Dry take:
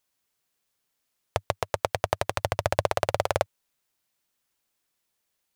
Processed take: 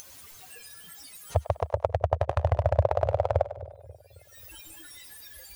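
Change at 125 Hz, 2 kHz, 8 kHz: +7.5 dB, −9.0 dB, can't be measured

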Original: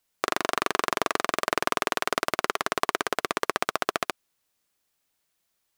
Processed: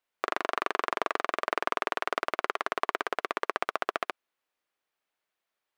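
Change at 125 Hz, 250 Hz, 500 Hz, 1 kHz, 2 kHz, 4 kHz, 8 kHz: below −10 dB, −7.0 dB, −3.5 dB, −2.5 dB, −3.5 dB, −8.0 dB, −15.0 dB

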